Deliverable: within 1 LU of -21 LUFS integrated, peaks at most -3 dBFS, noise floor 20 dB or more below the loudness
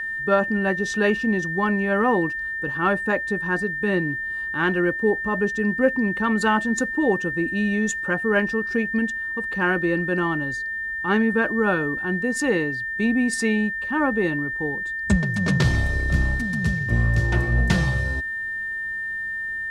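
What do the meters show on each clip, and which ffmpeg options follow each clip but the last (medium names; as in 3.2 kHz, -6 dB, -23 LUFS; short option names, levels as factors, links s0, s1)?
steady tone 1.8 kHz; tone level -26 dBFS; loudness -22.5 LUFS; peak level -6.5 dBFS; loudness target -21.0 LUFS
-> -af "bandreject=f=1800:w=30"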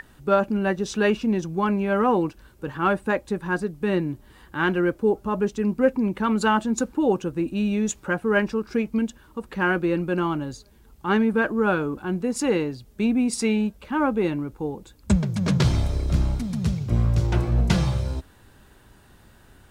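steady tone not found; loudness -24.0 LUFS; peak level -7.0 dBFS; loudness target -21.0 LUFS
-> -af "volume=1.41"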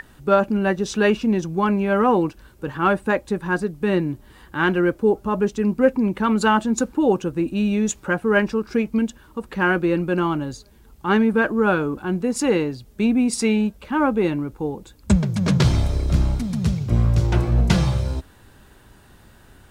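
loudness -21.0 LUFS; peak level -4.0 dBFS; noise floor -50 dBFS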